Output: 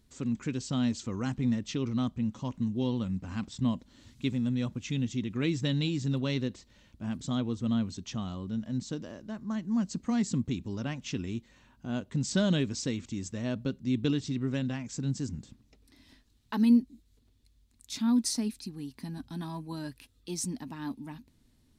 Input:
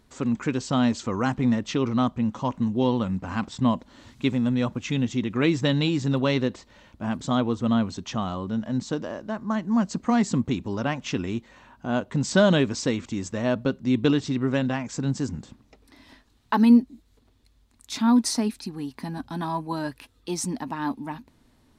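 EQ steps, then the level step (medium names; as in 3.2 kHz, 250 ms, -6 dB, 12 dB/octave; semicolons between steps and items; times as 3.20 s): peaking EQ 900 Hz -12 dB 2.6 oct; -3.0 dB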